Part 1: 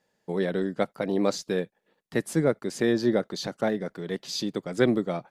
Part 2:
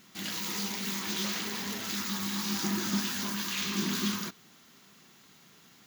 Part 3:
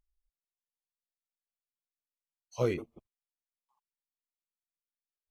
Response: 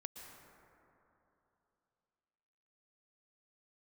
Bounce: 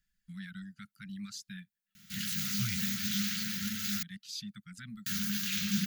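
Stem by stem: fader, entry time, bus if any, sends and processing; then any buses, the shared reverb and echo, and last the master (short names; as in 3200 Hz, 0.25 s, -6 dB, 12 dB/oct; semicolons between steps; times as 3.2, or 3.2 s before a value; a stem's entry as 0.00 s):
-9.0 dB, 0.00 s, no send, reverb removal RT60 0.73 s; limiter -18 dBFS, peak gain reduction 10.5 dB
-2.5 dB, 1.95 s, muted 4.03–5.06, no send, low shelf 190 Hz +10 dB
0.0 dB, 0.00 s, no send, dry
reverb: off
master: Chebyshev band-stop 210–1400 Hz, order 4; high shelf 9900 Hz +7 dB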